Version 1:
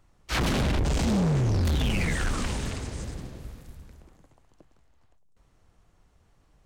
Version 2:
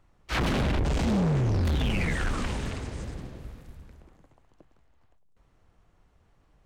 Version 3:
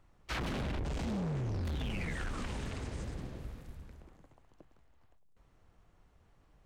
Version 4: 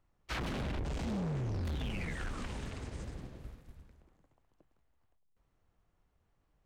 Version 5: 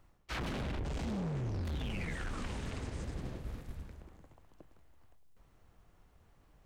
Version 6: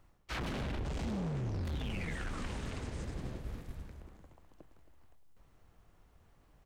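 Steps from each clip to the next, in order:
bass and treble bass −1 dB, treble −7 dB
downward compressor 6 to 1, threshold −33 dBFS, peak gain reduction 9 dB; level −2 dB
expander for the loud parts 1.5 to 1, over −53 dBFS
reversed playback; downward compressor 5 to 1, threshold −48 dBFS, peak gain reduction 13 dB; reversed playback; spring reverb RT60 2.3 s, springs 41 ms, DRR 17.5 dB; level +10.5 dB
single-tap delay 271 ms −15 dB

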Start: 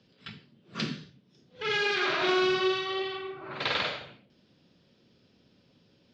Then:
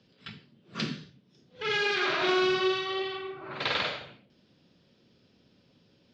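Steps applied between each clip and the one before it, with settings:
no processing that can be heard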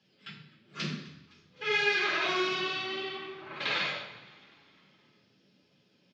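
flanger 0.87 Hz, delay 1 ms, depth 8.6 ms, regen +41%
echo with shifted repeats 256 ms, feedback 61%, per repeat −68 Hz, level −21.5 dB
convolution reverb RT60 1.0 s, pre-delay 3 ms, DRR −2 dB
level −2 dB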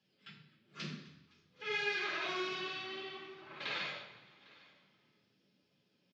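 single-tap delay 803 ms −23 dB
level −8.5 dB

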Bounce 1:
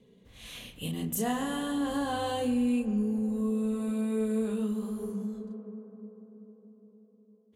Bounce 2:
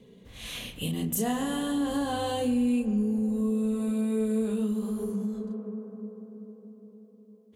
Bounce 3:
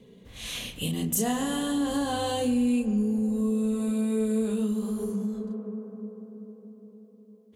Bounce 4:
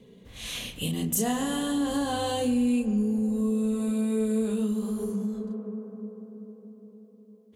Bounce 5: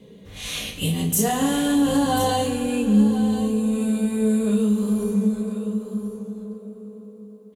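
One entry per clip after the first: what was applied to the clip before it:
dynamic equaliser 1,300 Hz, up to −4 dB, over −44 dBFS, Q 0.72; in parallel at +1 dB: downward compressor, threshold −38 dBFS, peak gain reduction 12.5 dB
dynamic equaliser 6,300 Hz, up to +5 dB, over −56 dBFS, Q 0.86; level +1 dB
no processing that can be heard
single-tap delay 1,037 ms −12 dB; convolution reverb, pre-delay 3 ms, DRR 0.5 dB; level +3.5 dB

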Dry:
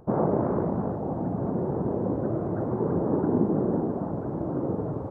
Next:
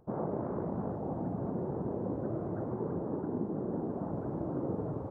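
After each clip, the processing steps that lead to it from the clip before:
speech leveller 0.5 s
level −8.5 dB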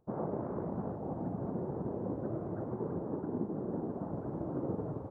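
expander for the loud parts 1.5 to 1, over −51 dBFS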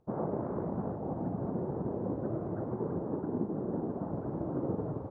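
high-frequency loss of the air 61 metres
level +2.5 dB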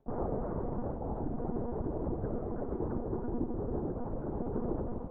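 one-pitch LPC vocoder at 8 kHz 240 Hz

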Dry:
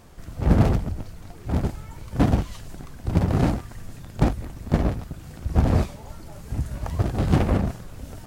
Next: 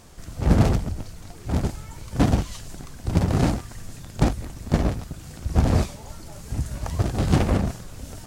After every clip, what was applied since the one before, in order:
parametric band 6,900 Hz +7.5 dB 1.9 octaves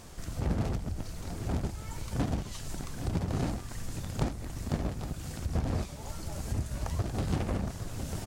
downward compressor 3 to 1, threshold −31 dBFS, peak gain reduction 14.5 dB
single-tap delay 817 ms −10.5 dB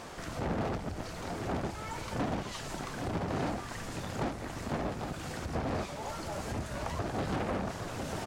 mid-hump overdrive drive 24 dB, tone 1,500 Hz, clips at −14 dBFS
in parallel at −7 dB: gain into a clipping stage and back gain 33.5 dB
on the sum: level −8 dB

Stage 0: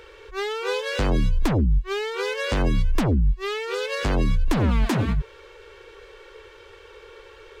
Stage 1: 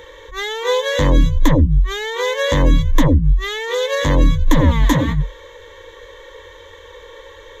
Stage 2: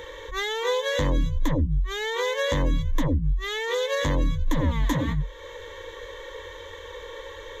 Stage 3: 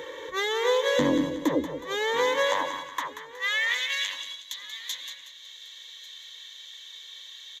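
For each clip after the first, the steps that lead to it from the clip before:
EQ curve with evenly spaced ripples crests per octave 1.1, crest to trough 15 dB; level +4.5 dB
downward compressor 2 to 1, threshold −28 dBFS, peak gain reduction 11.5 dB
repeating echo 184 ms, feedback 39%, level −9.5 dB; high-pass filter sweep 210 Hz → 3,900 Hz, 0:00.84–0:04.57; single-tap delay 1,145 ms −20 dB

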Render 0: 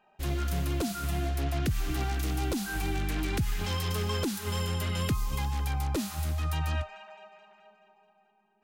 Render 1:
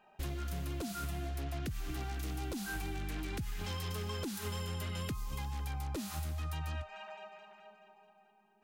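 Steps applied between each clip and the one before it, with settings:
downward compressor 6 to 1, threshold −37 dBFS, peak gain reduction 12.5 dB
level +1 dB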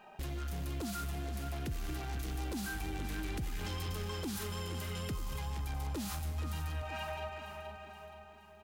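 brickwall limiter −38 dBFS, peak gain reduction 10.5 dB
leveller curve on the samples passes 1
repeating echo 473 ms, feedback 49%, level −10 dB
level +5 dB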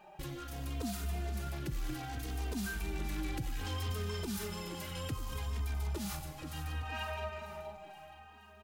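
barber-pole flanger 3 ms −0.65 Hz
level +3 dB

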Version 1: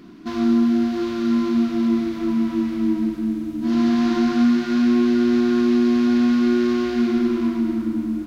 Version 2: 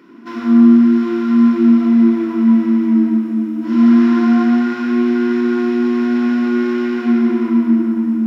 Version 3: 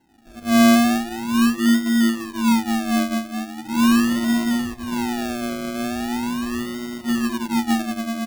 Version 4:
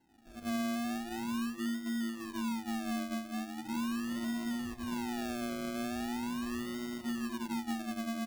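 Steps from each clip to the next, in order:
convolution reverb RT60 0.50 s, pre-delay 91 ms, DRR 1 dB; level −4 dB
sample-and-hold swept by an LFO 37×, swing 60% 0.4 Hz; comb filter 1.1 ms, depth 41%; expander for the loud parts 1.5 to 1, over −28 dBFS; level −5.5 dB
downward compressor 6 to 1, threshold −25 dBFS, peak gain reduction 13.5 dB; level −8.5 dB

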